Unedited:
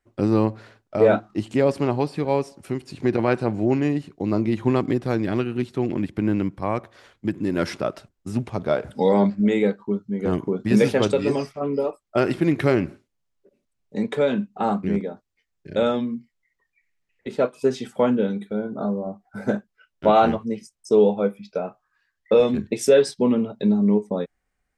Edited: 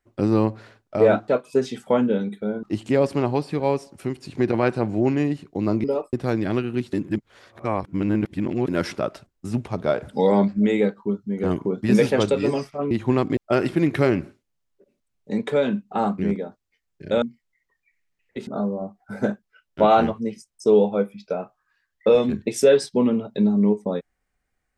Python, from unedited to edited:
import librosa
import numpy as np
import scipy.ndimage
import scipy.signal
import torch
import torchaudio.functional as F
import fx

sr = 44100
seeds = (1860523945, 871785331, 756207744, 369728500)

y = fx.edit(x, sr, fx.swap(start_s=4.49, length_s=0.46, other_s=11.73, other_length_s=0.29),
    fx.reverse_span(start_s=5.75, length_s=1.75),
    fx.cut(start_s=15.87, length_s=0.25),
    fx.move(start_s=17.37, length_s=1.35, to_s=1.28), tone=tone)